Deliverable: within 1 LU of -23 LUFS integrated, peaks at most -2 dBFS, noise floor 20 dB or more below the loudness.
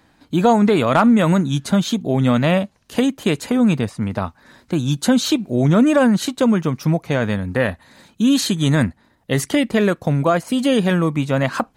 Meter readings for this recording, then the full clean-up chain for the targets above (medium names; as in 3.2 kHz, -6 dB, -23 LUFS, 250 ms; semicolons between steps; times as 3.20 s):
loudness -18.0 LUFS; peak level -3.0 dBFS; loudness target -23.0 LUFS
-> trim -5 dB